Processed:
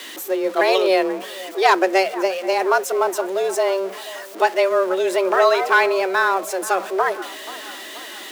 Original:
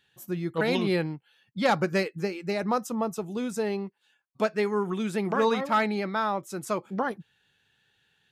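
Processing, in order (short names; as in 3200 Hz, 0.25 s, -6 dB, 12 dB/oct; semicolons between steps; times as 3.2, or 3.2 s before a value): zero-crossing step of -38 dBFS; frequency shift +190 Hz; band-limited delay 0.481 s, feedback 59%, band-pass 1000 Hz, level -16 dB; gain +8 dB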